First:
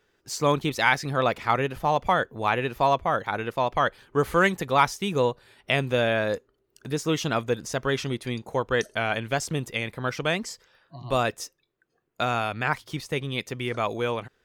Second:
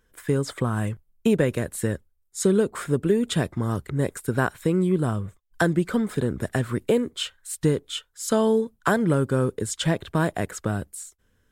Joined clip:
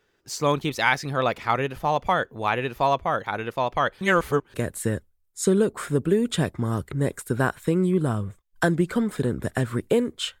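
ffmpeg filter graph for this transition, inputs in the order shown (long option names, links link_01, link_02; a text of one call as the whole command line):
ffmpeg -i cue0.wav -i cue1.wav -filter_complex "[0:a]apad=whole_dur=10.4,atrim=end=10.4,asplit=2[link_01][link_02];[link_01]atrim=end=4.012[link_03];[link_02]atrim=start=4.008:end=4.542,asetpts=PTS-STARTPTS,areverse[link_04];[1:a]atrim=start=1.518:end=7.38[link_05];[link_03][link_04]acrossfade=duration=0.004:curve1=hsin:curve2=hsin[link_06];[link_06][link_05]acrossfade=duration=0.004:curve1=hsin:curve2=hsin" out.wav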